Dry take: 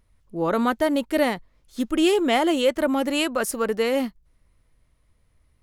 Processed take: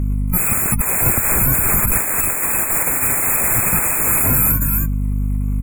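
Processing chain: bit-reversed sample order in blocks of 128 samples; comb 0.9 ms, depth 97%; vibrato 3.5 Hz 93 cents; ever faster or slower copies 475 ms, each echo +1 st, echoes 3, each echo -6 dB; in parallel at -3 dB: level held to a coarse grid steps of 17 dB; on the sum: hum 50 Hz, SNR 18 dB; sine folder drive 17 dB, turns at -8.5 dBFS; brick-wall FIR band-stop 2.6–6.8 kHz; 1.06–2.01 s: three bands compressed up and down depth 100%; trim -1.5 dB

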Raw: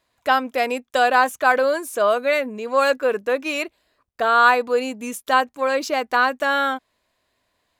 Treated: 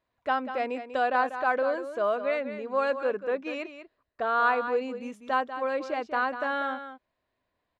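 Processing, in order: tape spacing loss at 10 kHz 25 dB; delay 193 ms -10.5 dB; trim -6.5 dB

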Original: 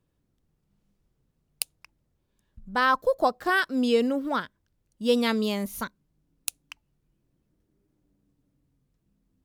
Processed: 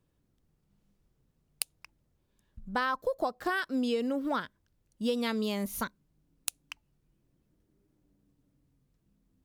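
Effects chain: compression 6:1, threshold -27 dBFS, peak gain reduction 10 dB

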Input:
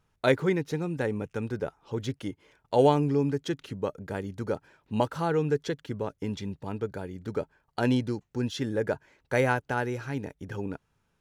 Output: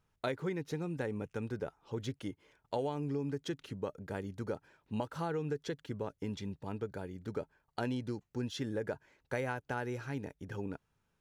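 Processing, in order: compression 10:1, threshold -26 dBFS, peak gain reduction 11 dB; trim -5.5 dB

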